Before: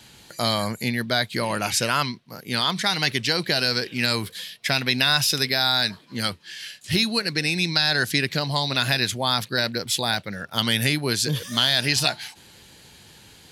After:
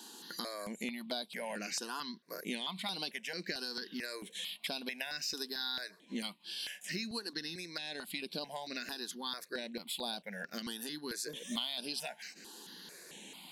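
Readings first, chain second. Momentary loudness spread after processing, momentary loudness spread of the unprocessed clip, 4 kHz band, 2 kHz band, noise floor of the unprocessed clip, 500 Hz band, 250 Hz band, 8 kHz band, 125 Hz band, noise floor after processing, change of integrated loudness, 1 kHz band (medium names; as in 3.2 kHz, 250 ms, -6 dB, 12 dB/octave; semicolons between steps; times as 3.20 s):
7 LU, 9 LU, -17.0 dB, -18.0 dB, -50 dBFS, -15.5 dB, -15.0 dB, -15.0 dB, -27.0 dB, -61 dBFS, -17.5 dB, -18.0 dB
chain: band-stop 1.3 kHz, Q 6.5; compression 5:1, threshold -36 dBFS, peak gain reduction 18 dB; brick-wall FIR high-pass 170 Hz; stepped phaser 4.5 Hz 590–6700 Hz; trim +1.5 dB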